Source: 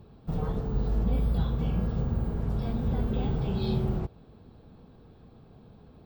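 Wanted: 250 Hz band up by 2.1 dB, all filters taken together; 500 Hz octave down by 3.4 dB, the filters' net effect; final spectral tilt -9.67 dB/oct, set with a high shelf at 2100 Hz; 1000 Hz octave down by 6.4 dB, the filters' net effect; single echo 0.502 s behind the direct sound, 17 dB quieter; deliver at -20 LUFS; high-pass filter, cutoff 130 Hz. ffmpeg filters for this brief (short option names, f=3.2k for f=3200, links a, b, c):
-af "highpass=130,equalizer=f=250:t=o:g=5,equalizer=f=500:t=o:g=-5,equalizer=f=1k:t=o:g=-5.5,highshelf=f=2.1k:g=-7.5,aecho=1:1:502:0.141,volume=12dB"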